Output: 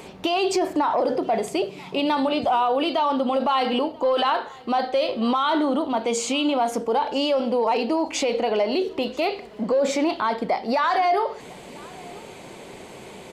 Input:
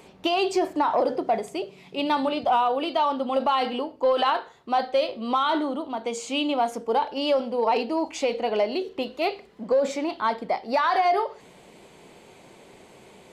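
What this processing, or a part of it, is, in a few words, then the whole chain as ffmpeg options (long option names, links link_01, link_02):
stacked limiters: -af "alimiter=limit=-19.5dB:level=0:latency=1:release=193,alimiter=limit=-23.5dB:level=0:latency=1:release=40,aecho=1:1:989:0.0668,volume=9dB"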